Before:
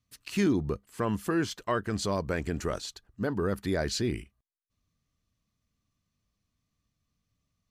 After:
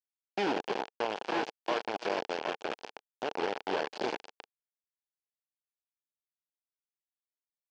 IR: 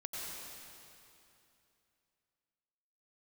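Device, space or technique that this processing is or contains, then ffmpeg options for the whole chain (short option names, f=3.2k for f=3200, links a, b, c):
hand-held game console: -filter_complex "[0:a]asettb=1/sr,asplit=3[a][b][c];[a]atrim=end=2.874[d];[b]atrim=start=2.87:end=3.42,asetpts=PTS-STARTPTS,afade=t=in:d=0.004:c=qsin,afade=t=out:st=0.546:d=0.004:c=qsin,lowshelf=f=120:g=2.5[e];[c]atrim=start=3.416[f];[d][e]acrossfade=d=0.004:c1=hsin:c2=qsin[g];[g][f]acrossfade=d=0.004:c1=qsin:c2=hsin,aecho=1:1:87|154|159|302|338|767:0.237|0.168|0.2|0.398|0.355|0.447,acrusher=bits=3:mix=0:aa=0.000001,highpass=410,equalizer=f=450:t=q:w=4:g=4,equalizer=f=820:t=q:w=4:g=5,equalizer=f=1.2k:t=q:w=4:g=-7,equalizer=f=2k:t=q:w=4:g=-6,equalizer=f=3.8k:t=q:w=4:g=-7,lowpass=f=4.3k:w=0.5412,lowpass=f=4.3k:w=1.3066,volume=-3.5dB"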